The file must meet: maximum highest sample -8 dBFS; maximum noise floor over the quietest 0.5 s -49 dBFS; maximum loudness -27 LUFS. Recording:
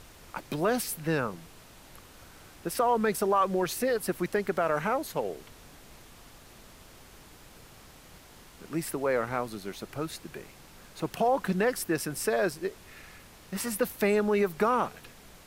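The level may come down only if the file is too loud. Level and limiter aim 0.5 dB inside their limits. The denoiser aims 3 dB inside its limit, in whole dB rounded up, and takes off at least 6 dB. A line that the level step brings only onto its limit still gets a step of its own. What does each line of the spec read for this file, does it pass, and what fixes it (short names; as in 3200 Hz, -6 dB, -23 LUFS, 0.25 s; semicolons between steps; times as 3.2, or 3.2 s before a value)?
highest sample -13.5 dBFS: OK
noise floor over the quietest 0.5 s -52 dBFS: OK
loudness -29.5 LUFS: OK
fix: none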